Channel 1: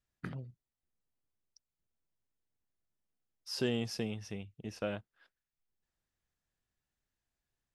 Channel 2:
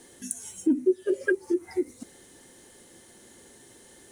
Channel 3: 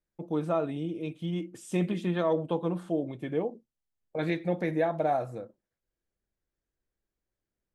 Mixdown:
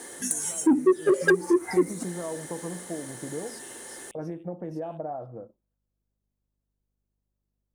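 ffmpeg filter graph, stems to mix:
ffmpeg -i stem1.wav -i stem2.wav -i stem3.wav -filter_complex "[0:a]aderivative,aeval=exprs='val(0)+0.000224*(sin(2*PI*50*n/s)+sin(2*PI*2*50*n/s)/2+sin(2*PI*3*50*n/s)/3+sin(2*PI*4*50*n/s)/4+sin(2*PI*5*50*n/s)/5)':channel_layout=same,volume=-8dB[link_01];[1:a]asplit=2[link_02][link_03];[link_03]highpass=frequency=720:poles=1,volume=19dB,asoftclip=type=tanh:threshold=-11.5dB[link_04];[link_02][link_04]amix=inputs=2:normalize=0,lowpass=frequency=4300:poles=1,volume=-6dB,firequalizer=gain_entry='entry(1700,0);entry(2700,-7);entry(9200,5)':delay=0.05:min_phase=1,volume=1dB[link_05];[2:a]lowpass=frequency=1200:width=0.5412,lowpass=frequency=1200:width=1.3066,acompressor=threshold=-29dB:ratio=6,volume=-1.5dB,afade=type=in:start_time=0.79:duration=0.66:silence=0.251189[link_06];[link_01][link_05][link_06]amix=inputs=3:normalize=0" out.wav

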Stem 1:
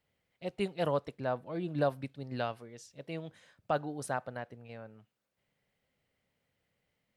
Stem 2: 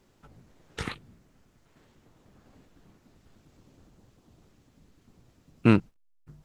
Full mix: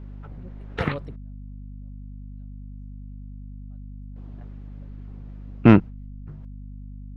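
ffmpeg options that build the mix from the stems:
ffmpeg -i stem1.wav -i stem2.wav -filter_complex "[0:a]lowshelf=frequency=420:gain=11,acrossover=split=430[link_01][link_02];[link_01]aeval=exprs='val(0)*(1-1/2+1/2*cos(2*PI*4.4*n/s))':channel_layout=same[link_03];[link_02]aeval=exprs='val(0)*(1-1/2-1/2*cos(2*PI*4.4*n/s))':channel_layout=same[link_04];[link_03][link_04]amix=inputs=2:normalize=0,volume=-7.5dB[link_05];[1:a]lowpass=2200,volume=2.5dB,asplit=3[link_06][link_07][link_08];[link_06]atrim=end=1.16,asetpts=PTS-STARTPTS,afade=type=out:start_time=1.156:duration=0.004:curve=hsin[link_09];[link_07]atrim=start=1.16:end=4.16,asetpts=PTS-STARTPTS,volume=0[link_10];[link_08]atrim=start=4.16,asetpts=PTS-STARTPTS,afade=type=in:duration=0.004:curve=hsin[link_11];[link_09][link_10][link_11]concat=n=3:v=0:a=1,asplit=2[link_12][link_13];[link_13]apad=whole_len=315894[link_14];[link_05][link_14]sidechaingate=range=-42dB:threshold=-52dB:ratio=16:detection=peak[link_15];[link_15][link_12]amix=inputs=2:normalize=0,acontrast=58,aeval=exprs='val(0)+0.0141*(sin(2*PI*50*n/s)+sin(2*PI*2*50*n/s)/2+sin(2*PI*3*50*n/s)/3+sin(2*PI*4*50*n/s)/4+sin(2*PI*5*50*n/s)/5)':channel_layout=same" out.wav

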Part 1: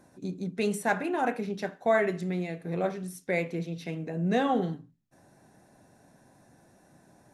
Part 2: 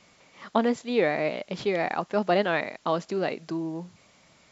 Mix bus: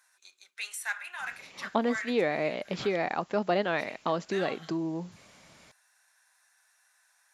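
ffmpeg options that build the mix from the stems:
ffmpeg -i stem1.wav -i stem2.wav -filter_complex "[0:a]highpass=frequency=1300:width=0.5412,highpass=frequency=1300:width=1.3066,volume=1.5dB,asplit=3[link_01][link_02][link_03];[link_01]atrim=end=2.97,asetpts=PTS-STARTPTS,afade=type=out:start_time=2.966:duration=0.004:curve=hsin[link_04];[link_02]atrim=start=2.97:end=3.72,asetpts=PTS-STARTPTS,volume=0[link_05];[link_03]atrim=start=3.72,asetpts=PTS-STARTPTS,afade=type=in:duration=0.004:curve=hsin[link_06];[link_04][link_05][link_06]concat=n=3:v=0:a=1[link_07];[1:a]adelay=1200,volume=2dB[link_08];[link_07][link_08]amix=inputs=2:normalize=0,acompressor=threshold=-33dB:ratio=1.5" out.wav

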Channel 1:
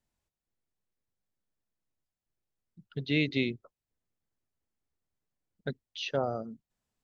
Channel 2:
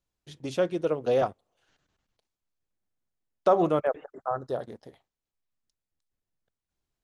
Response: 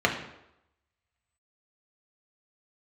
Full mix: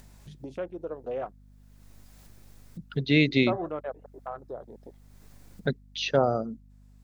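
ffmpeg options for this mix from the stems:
-filter_complex "[0:a]equalizer=frequency=3000:width_type=o:width=0.3:gain=-4.5,dynaudnorm=framelen=170:gausssize=7:maxgain=12.5dB,volume=-4.5dB[link_01];[1:a]lowshelf=frequency=120:gain=-12,afwtdn=0.00891,volume=-8.5dB[link_02];[link_01][link_02]amix=inputs=2:normalize=0,acompressor=mode=upward:threshold=-33dB:ratio=2.5,aeval=exprs='val(0)+0.00224*(sin(2*PI*50*n/s)+sin(2*PI*2*50*n/s)/2+sin(2*PI*3*50*n/s)/3+sin(2*PI*4*50*n/s)/4+sin(2*PI*5*50*n/s)/5)':channel_layout=same"

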